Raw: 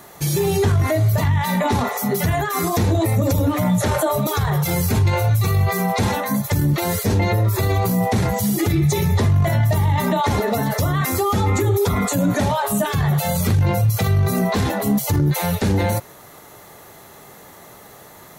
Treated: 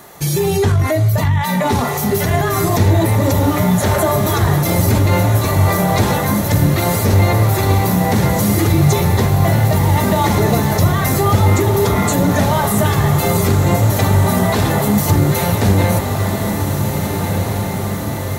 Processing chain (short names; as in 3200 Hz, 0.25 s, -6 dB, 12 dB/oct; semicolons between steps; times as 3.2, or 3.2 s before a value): diffused feedback echo 1.712 s, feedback 66%, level -5 dB; gain +3 dB